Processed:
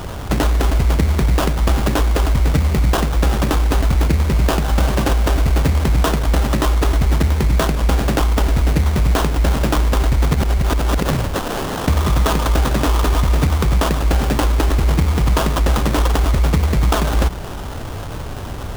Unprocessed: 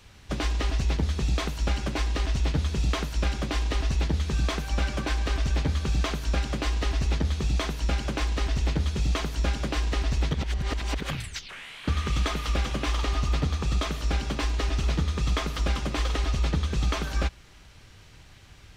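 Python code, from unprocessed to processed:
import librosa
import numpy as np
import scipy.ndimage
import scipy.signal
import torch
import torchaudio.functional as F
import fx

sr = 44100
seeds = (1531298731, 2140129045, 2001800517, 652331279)

y = fx.sample_hold(x, sr, seeds[0], rate_hz=2200.0, jitter_pct=20)
y = fx.env_flatten(y, sr, amount_pct=50)
y = F.gain(torch.from_numpy(y), 9.0).numpy()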